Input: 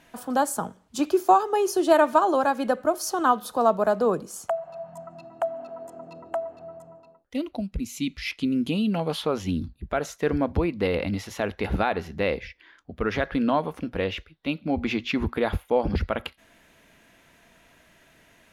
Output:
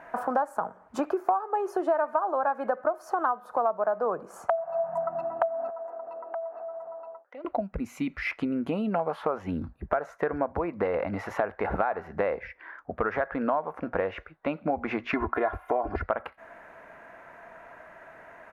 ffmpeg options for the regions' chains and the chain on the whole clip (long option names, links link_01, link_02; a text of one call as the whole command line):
ffmpeg -i in.wav -filter_complex "[0:a]asettb=1/sr,asplit=3[link_01][link_02][link_03];[link_01]atrim=end=5.704[link_04];[link_02]atrim=start=5.7:end=7.45,asetpts=PTS-STARTPTS,afade=type=in:duration=0.004:curve=qsin,afade=type=out:start_time=1.746:duration=0.004:curve=qsin,highpass=430,lowpass=4500,acompressor=threshold=-52dB:ratio=3:attack=3.2:release=140:knee=1:detection=peak[link_05];[link_03]atrim=start=7.446[link_06];[link_04][link_05]acrossfade=duration=0.004:curve1=hsin:curve2=qsin[link_07];[link_07][link_06]acrossfade=duration=0.004:curve1=qsin:curve2=hsin,asettb=1/sr,asplit=3[link_08][link_09][link_10];[link_08]atrim=end=15.134[link_11];[link_09]atrim=start=15.13:end=16.03,asetpts=PTS-STARTPTS,afade=type=in:duration=0.004:curve=qsin,afade=type=out:start_time=0.896:duration=0.004:curve=qsin,aecho=1:1:2.9:0.89,atrim=end_sample=39690,acompressor=mode=upward:threshold=-25dB:ratio=2.5:attack=3.2:release=140:knee=2.83:detection=peak[link_12];[link_10]atrim=start=16.026[link_13];[link_11][link_12]acrossfade=duration=0.004:curve1=hsin:curve2=qsin[link_14];[link_14][link_13]acrossfade=duration=0.004:curve1=qsin:curve2=hsin,firequalizer=gain_entry='entry(260,0);entry(640,13);entry(1500,11);entry(3300,-14)':delay=0.05:min_phase=1,acompressor=threshold=-26dB:ratio=6,lowshelf=frequency=140:gain=-5,volume=1.5dB" out.wav